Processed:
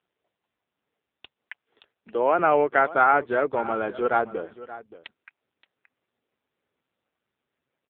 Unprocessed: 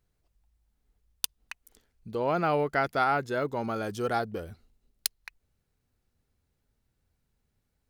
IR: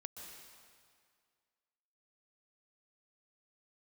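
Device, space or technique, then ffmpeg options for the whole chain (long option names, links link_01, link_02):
satellite phone: -filter_complex "[0:a]asettb=1/sr,asplit=3[link_01][link_02][link_03];[link_01]atrim=end=1.384[link_04];[link_02]atrim=start=1.38:end=2.39,asetpts=PTS-STARTPTS,afade=type=in:duration=0.004:curve=qsin,afade=type=out:start_time=1.006:duration=0.004:curve=qsin,acrossover=split=220 7900:gain=0.2 1 0.1[link_05][link_06][link_07];[link_05][link_06][link_07]amix=inputs=3:normalize=0[link_08];[link_03]atrim=start=2.386[link_09];[link_04][link_08]acrossfade=duration=0.004:curve1=hsin:curve2=qsin[link_10];[link_10][link_09]acrossfade=duration=0.004:curve1=qsin:curve2=hsin,highpass=330,lowpass=3000,aecho=1:1:575:0.15,volume=8dB" -ar 8000 -c:a libopencore_amrnb -b:a 5900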